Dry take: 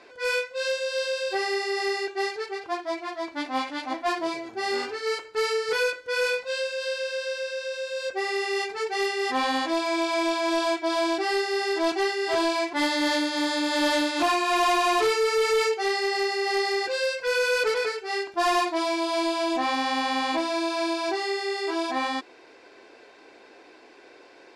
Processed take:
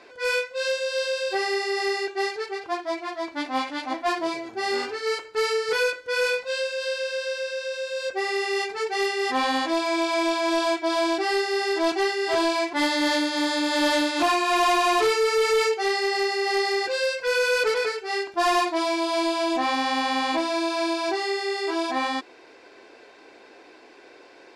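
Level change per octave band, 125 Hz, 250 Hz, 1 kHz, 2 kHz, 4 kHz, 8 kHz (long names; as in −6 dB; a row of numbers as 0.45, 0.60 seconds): can't be measured, +1.5 dB, +1.5 dB, +1.5 dB, +1.5 dB, +1.5 dB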